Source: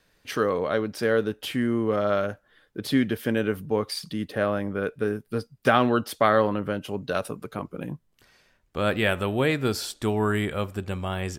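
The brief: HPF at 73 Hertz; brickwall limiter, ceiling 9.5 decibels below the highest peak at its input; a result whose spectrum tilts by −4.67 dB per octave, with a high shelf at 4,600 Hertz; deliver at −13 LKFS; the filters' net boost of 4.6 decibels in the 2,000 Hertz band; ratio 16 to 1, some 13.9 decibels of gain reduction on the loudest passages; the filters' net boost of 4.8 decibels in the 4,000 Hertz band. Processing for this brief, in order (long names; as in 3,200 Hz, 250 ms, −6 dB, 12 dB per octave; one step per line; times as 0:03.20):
high-pass filter 73 Hz
parametric band 2,000 Hz +5.5 dB
parametric band 4,000 Hz +6 dB
high-shelf EQ 4,600 Hz −3.5 dB
downward compressor 16 to 1, threshold −26 dBFS
level +21.5 dB
brickwall limiter −1 dBFS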